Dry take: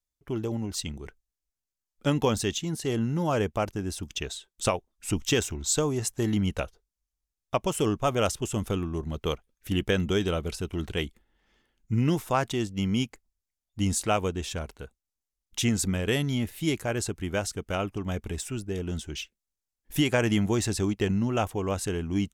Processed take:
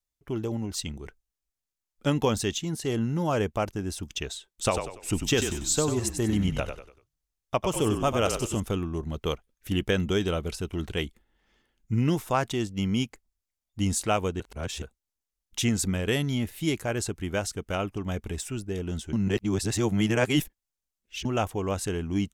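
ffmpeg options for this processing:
-filter_complex "[0:a]asettb=1/sr,asplit=3[a][b][c];[a]atrim=end=4.524[d];[b]atrim=start=4.52:end=8.6,asetpts=PTS-STARTPTS,afade=t=in:d=0.004:c=qsin,afade=t=out:st=4.076:d=0.004:c=qsin,asplit=5[e][f][g][h][i];[f]adelay=96,afreqshift=-41,volume=-7dB[j];[g]adelay=192,afreqshift=-82,volume=-15.9dB[k];[h]adelay=288,afreqshift=-123,volume=-24.7dB[l];[i]adelay=384,afreqshift=-164,volume=-33.6dB[m];[e][j][k][l][m]amix=inputs=5:normalize=0,atrim=end_sample=179928[n];[c]atrim=start=8.596[o];[d][n]acrossfade=d=0.004:c1=hsin:c2=qsin[p];[p][o]acrossfade=d=0.004:c1=qsin:c2=hsin,asplit=5[q][r][s][t][u];[q]atrim=end=14.402[v];[r]atrim=start=14.398:end=14.822,asetpts=PTS-STARTPTS,areverse[w];[s]atrim=start=14.818:end=19.132[x];[t]atrim=start=19.128:end=21.252,asetpts=PTS-STARTPTS,areverse[y];[u]atrim=start=21.248[z];[v][w]acrossfade=d=0.004:c1=hsin:c2=hsin[aa];[aa][x]acrossfade=d=0.004:c1=hsin:c2=hsin[ab];[ab][y]acrossfade=d=0.004:c1=hsin:c2=hsin[ac];[ac][z]acrossfade=d=0.004:c1=hsin:c2=hsin"

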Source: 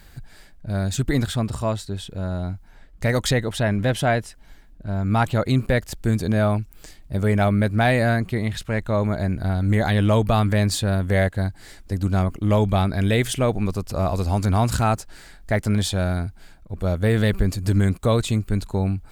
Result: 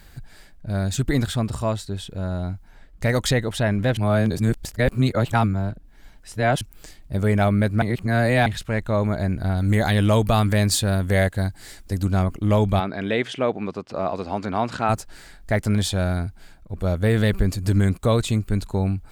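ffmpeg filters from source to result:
-filter_complex "[0:a]asettb=1/sr,asplit=3[a][b][c];[a]atrim=end=9.574[d];[b]atrim=start=9.57:end=12.05,asetpts=PTS-STARTPTS,afade=t=in:d=0.004:c=qsin,afade=t=out:st=2.476:d=0.004:c=qsin,highshelf=f=4.4k:g=6.5[e];[c]atrim=start=12.046[f];[d][e]acrossfade=d=0.004:c1=hsin:c2=qsin[g];[g][f]acrossfade=d=0.004:c1=qsin:c2=hsin,asplit=3[h][i][j];[h]afade=t=out:st=12.79:d=0.02[k];[i]highpass=240,lowpass=3.4k,afade=t=in:st=12.79:d=0.02,afade=t=out:st=14.88:d=0.02[l];[j]afade=t=in:st=14.88:d=0.02[m];[k][l][m]amix=inputs=3:normalize=0,asplit=5[n][o][p][q][r];[n]atrim=end=3.972[s];[o]atrim=start=3.968:end=6.612,asetpts=PTS-STARTPTS,areverse[t];[p]atrim=start=6.608:end=7.822[u];[q]atrim=start=7.818:end=8.462,asetpts=PTS-STARTPTS,areverse[v];[r]atrim=start=8.458[w];[s][t]acrossfade=d=0.004:c1=hsin:c2=hsin[x];[x][u]acrossfade=d=0.004:c1=hsin:c2=hsin[y];[y][v]acrossfade=d=0.004:c1=hsin:c2=hsin[z];[z][w]acrossfade=d=0.004:c1=hsin:c2=hsin"

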